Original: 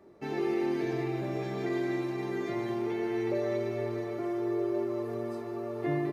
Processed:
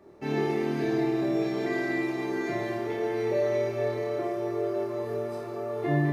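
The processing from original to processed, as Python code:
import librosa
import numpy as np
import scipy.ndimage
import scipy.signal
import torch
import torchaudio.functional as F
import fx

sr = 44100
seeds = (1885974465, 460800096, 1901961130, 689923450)

y = fx.room_flutter(x, sr, wall_m=4.7, rt60_s=0.49)
y = y * 10.0 ** (2.0 / 20.0)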